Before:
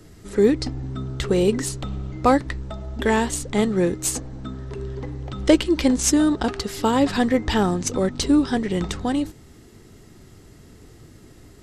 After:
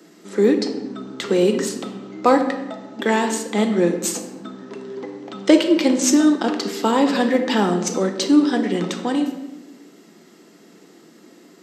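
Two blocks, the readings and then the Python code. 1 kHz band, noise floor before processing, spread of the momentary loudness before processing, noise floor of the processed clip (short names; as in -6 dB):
+2.5 dB, -48 dBFS, 14 LU, -49 dBFS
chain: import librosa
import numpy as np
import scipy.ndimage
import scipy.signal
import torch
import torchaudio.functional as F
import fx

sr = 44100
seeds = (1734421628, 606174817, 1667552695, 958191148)

y = scipy.signal.sosfilt(scipy.signal.butter(8, 190.0, 'highpass', fs=sr, output='sos'), x)
y = fx.peak_eq(y, sr, hz=10000.0, db=-14.0, octaves=0.24)
y = fx.room_shoebox(y, sr, seeds[0], volume_m3=460.0, walls='mixed', distance_m=0.75)
y = F.gain(torch.from_numpy(y), 1.5).numpy()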